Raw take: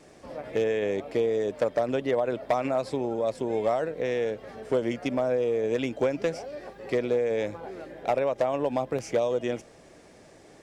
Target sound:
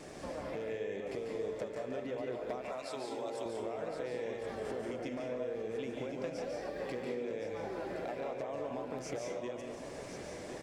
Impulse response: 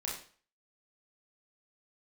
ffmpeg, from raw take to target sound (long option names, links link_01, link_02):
-filter_complex "[0:a]asettb=1/sr,asplit=3[link_01][link_02][link_03];[link_01]atrim=end=2.614[link_04];[link_02]atrim=start=2.61:end=3.46,asetpts=PTS-STARTPTS,afade=type=in:duration=0.004:curve=qsin,afade=type=out:start_time=0.846:duration=0.004:curve=qsin,highpass=frequency=1500:poles=1[link_05];[link_03]atrim=start=3.456[link_06];[link_04][link_05]acrossfade=duration=0.004:curve1=hsin:curve2=qsin[link_07];[link_07][link_06]acrossfade=duration=0.004:curve1=qsin:curve2=hsin,alimiter=level_in=4.5dB:limit=-24dB:level=0:latency=1:release=352,volume=-4.5dB,acompressor=threshold=-44dB:ratio=4,aecho=1:1:1066:0.355,asplit=2[link_08][link_09];[1:a]atrim=start_sample=2205,adelay=144[link_10];[link_09][link_10]afir=irnorm=-1:irlink=0,volume=-2.5dB[link_11];[link_08][link_11]amix=inputs=2:normalize=0,volume=4dB"